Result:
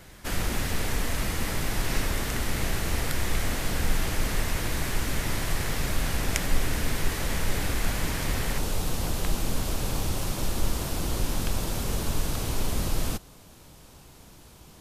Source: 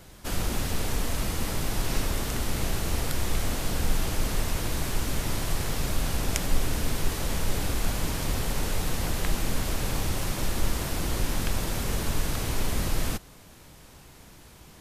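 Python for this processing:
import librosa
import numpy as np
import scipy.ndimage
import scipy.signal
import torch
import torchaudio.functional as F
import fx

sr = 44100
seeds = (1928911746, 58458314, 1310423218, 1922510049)

y = fx.peak_eq(x, sr, hz=1900.0, db=fx.steps((0.0, 5.5), (8.58, -4.5)), octaves=0.77)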